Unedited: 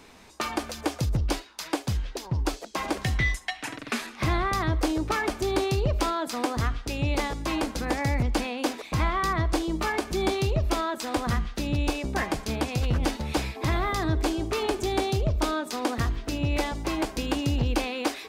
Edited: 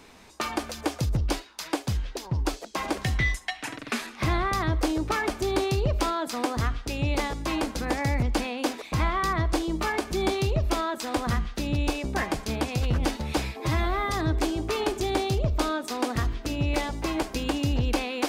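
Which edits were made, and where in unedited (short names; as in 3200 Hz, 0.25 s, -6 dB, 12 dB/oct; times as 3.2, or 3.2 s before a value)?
13.6–13.95 stretch 1.5×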